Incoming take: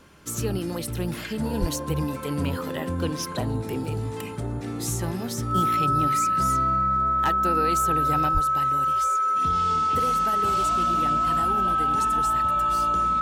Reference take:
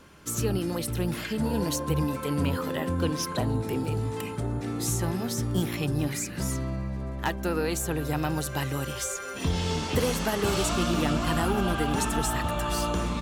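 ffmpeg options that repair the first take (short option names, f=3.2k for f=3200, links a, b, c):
-filter_complex "[0:a]bandreject=f=1.3k:w=30,asplit=3[a][b][c];[a]afade=t=out:st=1.6:d=0.02[d];[b]highpass=f=140:w=0.5412,highpass=f=140:w=1.3066,afade=t=in:st=1.6:d=0.02,afade=t=out:st=1.72:d=0.02[e];[c]afade=t=in:st=1.72:d=0.02[f];[d][e][f]amix=inputs=3:normalize=0,asplit=3[g][h][i];[g]afade=t=out:st=8.33:d=0.02[j];[h]highpass=f=140:w=0.5412,highpass=f=140:w=1.3066,afade=t=in:st=8.33:d=0.02,afade=t=out:st=8.45:d=0.02[k];[i]afade=t=in:st=8.45:d=0.02[l];[j][k][l]amix=inputs=3:normalize=0,asetnsamples=n=441:p=0,asendcmd='8.29 volume volume 6dB',volume=0dB"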